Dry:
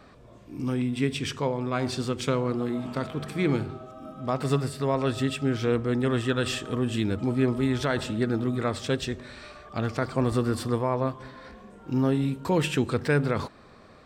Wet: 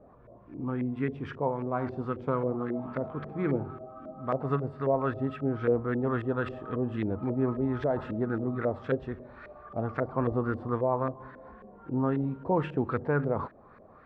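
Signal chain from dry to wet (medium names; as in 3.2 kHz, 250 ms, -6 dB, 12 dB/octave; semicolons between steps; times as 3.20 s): LFO low-pass saw up 3.7 Hz 510–1800 Hz; trim -5 dB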